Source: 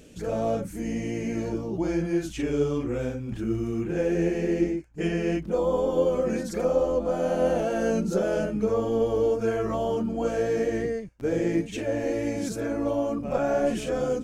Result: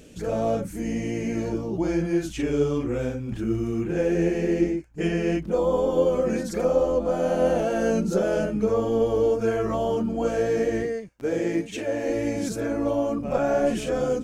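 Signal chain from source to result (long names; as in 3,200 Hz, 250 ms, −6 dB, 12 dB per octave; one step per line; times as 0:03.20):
0:10.83–0:12.08: low-shelf EQ 160 Hz −11 dB
level +2 dB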